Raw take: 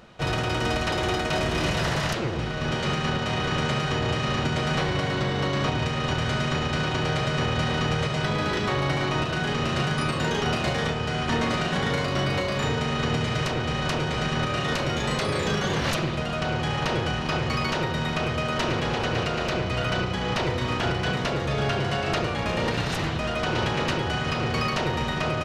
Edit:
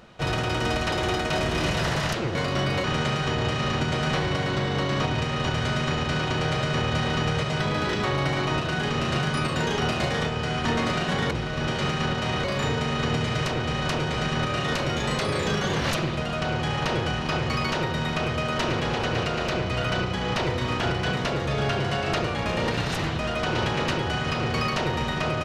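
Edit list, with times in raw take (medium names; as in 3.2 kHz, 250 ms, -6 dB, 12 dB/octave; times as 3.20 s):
2.35–3.48 s: swap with 11.95–12.44 s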